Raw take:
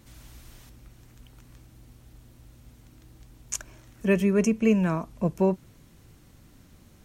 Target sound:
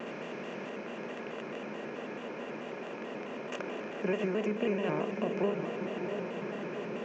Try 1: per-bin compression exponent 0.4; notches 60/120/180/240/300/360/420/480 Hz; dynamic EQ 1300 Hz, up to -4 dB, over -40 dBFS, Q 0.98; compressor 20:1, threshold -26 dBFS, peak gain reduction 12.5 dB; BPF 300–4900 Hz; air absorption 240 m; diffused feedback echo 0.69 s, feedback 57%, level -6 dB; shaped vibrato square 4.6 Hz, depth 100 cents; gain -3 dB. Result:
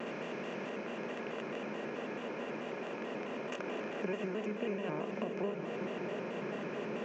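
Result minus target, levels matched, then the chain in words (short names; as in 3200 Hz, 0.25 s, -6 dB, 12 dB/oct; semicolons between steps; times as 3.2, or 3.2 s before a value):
compressor: peak gain reduction +6 dB
per-bin compression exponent 0.4; notches 60/120/180/240/300/360/420/480 Hz; dynamic EQ 1300 Hz, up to -4 dB, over -40 dBFS, Q 0.98; compressor 20:1, threshold -19.5 dBFS, peak gain reduction 6 dB; BPF 300–4900 Hz; air absorption 240 m; diffused feedback echo 0.69 s, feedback 57%, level -6 dB; shaped vibrato square 4.6 Hz, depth 100 cents; gain -3 dB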